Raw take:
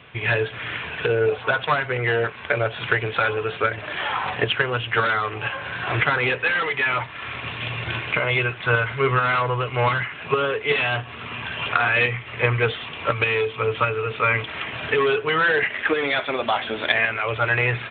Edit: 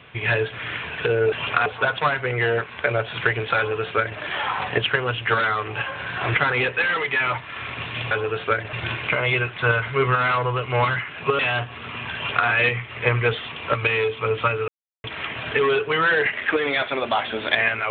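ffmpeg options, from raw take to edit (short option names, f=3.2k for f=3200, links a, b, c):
-filter_complex "[0:a]asplit=8[a][b][c][d][e][f][g][h];[a]atrim=end=1.322[i];[b]atrim=start=11.508:end=11.852[j];[c]atrim=start=1.318:end=7.772[k];[d]atrim=start=3.238:end=3.862[l];[e]atrim=start=7.768:end=10.432[m];[f]atrim=start=10.758:end=14.05,asetpts=PTS-STARTPTS,afade=t=out:st=3.288:d=0.004:c=hsin[n];[g]atrim=start=14.05:end=14.41,asetpts=PTS-STARTPTS,volume=0[o];[h]atrim=start=14.41,asetpts=PTS-STARTPTS,afade=t=in:d=0.004:c=hsin[p];[i][j]acrossfade=d=0.004:c1=hsin:c2=hsin[q];[q][k]acrossfade=d=0.004:c1=hsin:c2=hsin[r];[r][l]acrossfade=d=0.004:c1=hsin:c2=hsin[s];[s][m]acrossfade=d=0.004:c1=hsin:c2=hsin[t];[n][o][p]concat=n=3:v=0:a=1[u];[t][u]acrossfade=d=0.004:c1=hsin:c2=hsin"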